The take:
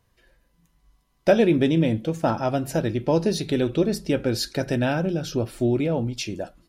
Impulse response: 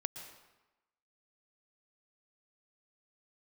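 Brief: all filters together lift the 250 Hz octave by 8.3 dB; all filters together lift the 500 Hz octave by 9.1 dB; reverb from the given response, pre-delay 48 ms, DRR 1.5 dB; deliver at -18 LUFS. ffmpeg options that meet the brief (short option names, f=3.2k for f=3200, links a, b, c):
-filter_complex "[0:a]equalizer=f=250:t=o:g=7.5,equalizer=f=500:t=o:g=9,asplit=2[a][b];[1:a]atrim=start_sample=2205,adelay=48[c];[b][c]afir=irnorm=-1:irlink=0,volume=-1dB[d];[a][d]amix=inputs=2:normalize=0,volume=-4.5dB"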